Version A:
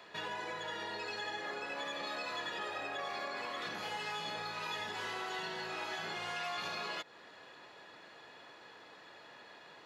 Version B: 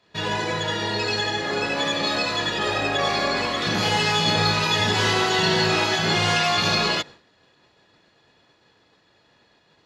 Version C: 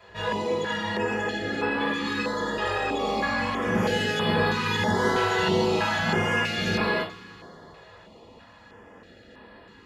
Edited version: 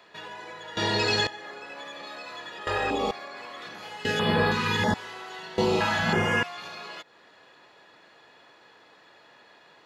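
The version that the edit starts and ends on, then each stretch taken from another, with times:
A
0.77–1.27 s: from B
2.67–3.11 s: from C
4.05–4.94 s: from C
5.58–6.43 s: from C

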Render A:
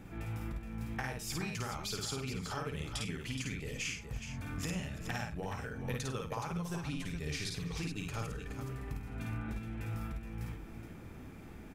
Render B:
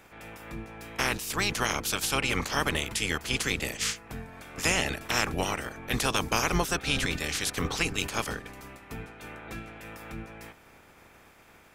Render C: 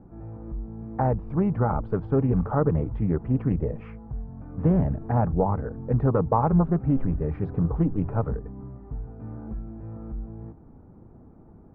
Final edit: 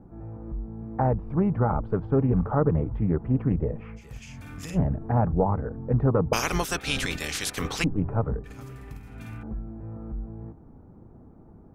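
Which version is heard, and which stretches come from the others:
C
3.99–4.76 s: from A, crossfade 0.06 s
6.33–7.84 s: from B
8.44–9.43 s: from A

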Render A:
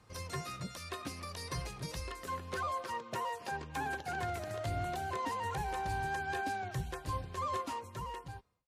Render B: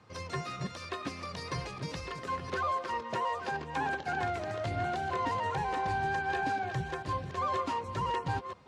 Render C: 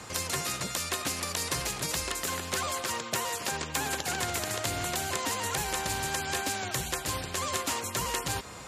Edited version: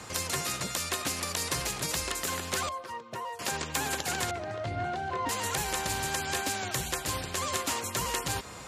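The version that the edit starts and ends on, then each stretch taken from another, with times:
C
2.69–3.39 s: from A
4.31–5.29 s: from B

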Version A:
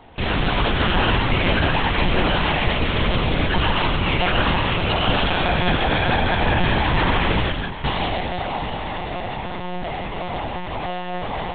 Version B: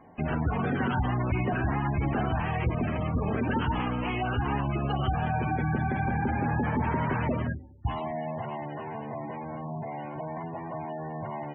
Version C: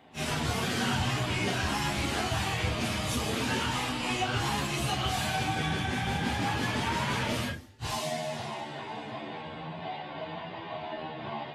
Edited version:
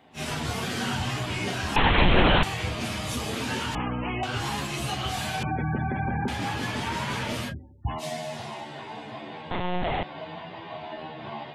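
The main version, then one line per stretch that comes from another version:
C
1.76–2.43 s: from A
3.75–4.23 s: from B
5.43–6.28 s: from B
7.51–8.01 s: from B, crossfade 0.06 s
9.51–10.03 s: from A

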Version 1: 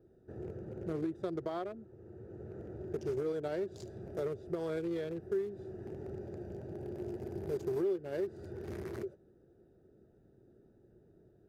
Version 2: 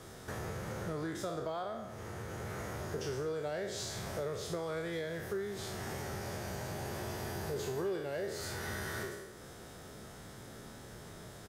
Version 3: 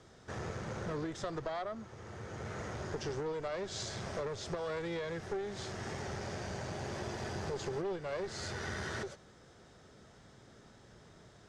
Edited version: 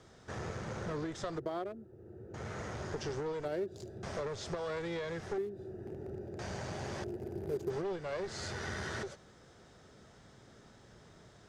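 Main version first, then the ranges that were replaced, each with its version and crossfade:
3
1.38–2.34 s: from 1
3.45–4.03 s: from 1
5.38–6.39 s: from 1
7.04–7.70 s: from 1
not used: 2

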